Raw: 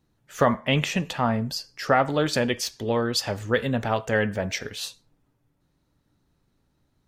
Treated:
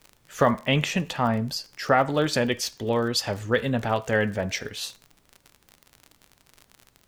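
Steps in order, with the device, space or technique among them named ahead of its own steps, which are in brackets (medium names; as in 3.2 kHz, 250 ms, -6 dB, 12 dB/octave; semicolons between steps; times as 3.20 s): vinyl LP (crackle 43 per s -33 dBFS; pink noise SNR 39 dB)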